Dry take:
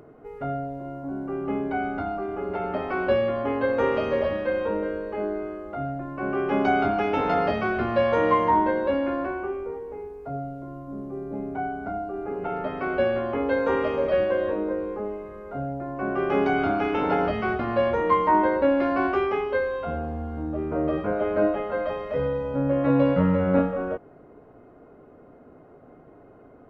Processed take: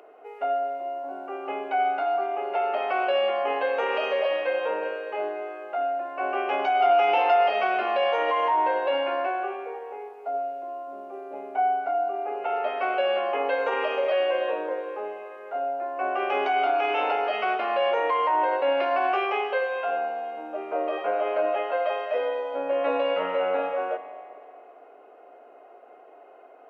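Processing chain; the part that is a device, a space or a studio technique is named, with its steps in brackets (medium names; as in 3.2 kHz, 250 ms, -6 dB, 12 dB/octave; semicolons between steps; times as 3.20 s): laptop speaker (high-pass 430 Hz 24 dB/octave; peaking EQ 730 Hz +8 dB 0.34 oct; peaking EQ 2.7 kHz +11 dB 0.49 oct; peak limiter -16.5 dBFS, peak gain reduction 9 dB); 6.80–7.50 s: comb 5.7 ms, depth 65%; spring tank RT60 2.3 s, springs 39/50 ms, chirp 30 ms, DRR 9 dB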